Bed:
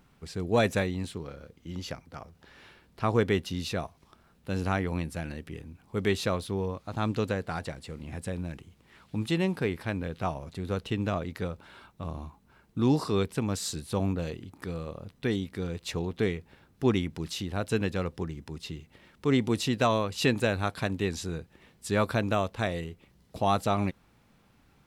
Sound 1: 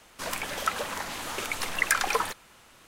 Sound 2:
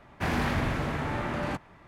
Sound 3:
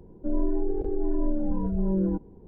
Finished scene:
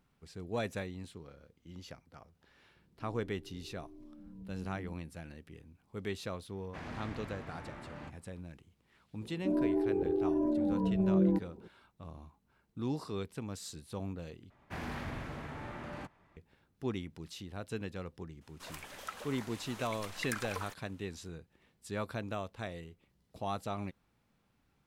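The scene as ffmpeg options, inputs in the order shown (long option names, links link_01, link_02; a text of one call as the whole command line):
ffmpeg -i bed.wav -i cue0.wav -i cue1.wav -i cue2.wav -filter_complex "[3:a]asplit=2[link_01][link_02];[2:a]asplit=2[link_03][link_04];[0:a]volume=-11.5dB[link_05];[link_01]bandpass=frequency=130:width_type=q:width=1.5:csg=0[link_06];[link_03]lowpass=7800[link_07];[link_02]highpass=120[link_08];[link_05]asplit=2[link_09][link_10];[link_09]atrim=end=14.504[link_11];[link_04]atrim=end=1.87,asetpts=PTS-STARTPTS,volume=-12.5dB[link_12];[link_10]atrim=start=16.366[link_13];[link_06]atrim=end=2.47,asetpts=PTS-STARTPTS,volume=-15dB,afade=type=in:duration=0.004:curve=hsin,afade=type=out:start_time=2.466:duration=0.004:curve=hsin,adelay=2760[link_14];[link_07]atrim=end=1.87,asetpts=PTS-STARTPTS,volume=-16.5dB,afade=type=in:duration=0.004:curve=hsin,afade=type=out:start_time=1.866:duration=0.004:curve=hsin,adelay=6530[link_15];[link_08]atrim=end=2.47,asetpts=PTS-STARTPTS,volume=-1dB,afade=type=in:duration=0.004:curve=hsin,afade=type=out:start_time=2.466:duration=0.004:curve=hsin,adelay=9210[link_16];[1:a]atrim=end=2.87,asetpts=PTS-STARTPTS,volume=-15dB,afade=type=in:duration=0.004:curve=hsin,afade=type=out:start_time=2.866:duration=0.004:curve=hsin,adelay=18410[link_17];[link_11][link_12]acrossfade=duration=0.004:curve1=hsin:curve2=hsin[link_18];[link_18][link_13]acrossfade=duration=0.004:curve1=hsin:curve2=hsin[link_19];[link_19][link_14][link_15][link_16][link_17]amix=inputs=5:normalize=0" out.wav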